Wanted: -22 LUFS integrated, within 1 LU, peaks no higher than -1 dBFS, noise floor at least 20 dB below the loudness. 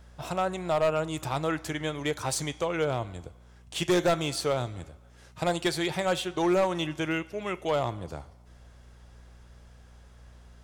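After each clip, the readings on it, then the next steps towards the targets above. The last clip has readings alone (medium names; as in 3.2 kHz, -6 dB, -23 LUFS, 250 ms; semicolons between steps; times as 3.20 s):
clipped samples 0.8%; clipping level -19.0 dBFS; hum 60 Hz; highest harmonic 240 Hz; hum level -53 dBFS; loudness -29.0 LUFS; peak level -19.0 dBFS; loudness target -22.0 LUFS
-> clip repair -19 dBFS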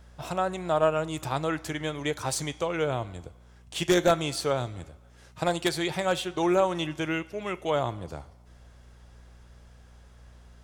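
clipped samples 0.0%; hum 60 Hz; highest harmonic 240 Hz; hum level -53 dBFS
-> de-hum 60 Hz, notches 4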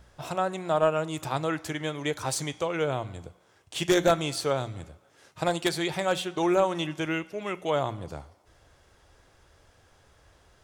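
hum not found; loudness -28.5 LUFS; peak level -9.5 dBFS; loudness target -22.0 LUFS
-> trim +6.5 dB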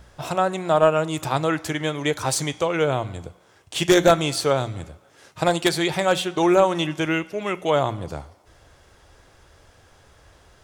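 loudness -22.0 LUFS; peak level -3.0 dBFS; noise floor -56 dBFS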